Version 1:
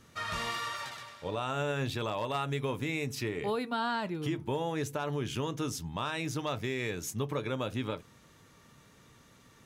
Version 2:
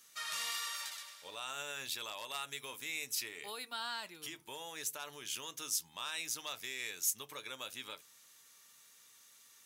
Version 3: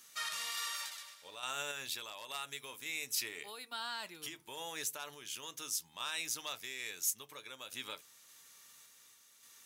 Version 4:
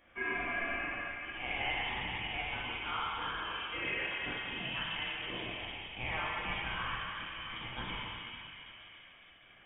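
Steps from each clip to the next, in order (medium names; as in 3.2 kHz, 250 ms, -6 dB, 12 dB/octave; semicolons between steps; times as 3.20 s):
differentiator; trim +6 dB
crackle 410 per s -65 dBFS; random-step tremolo; trim +3 dB
plate-style reverb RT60 4.5 s, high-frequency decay 0.45×, DRR -7.5 dB; frequency inversion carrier 3.5 kHz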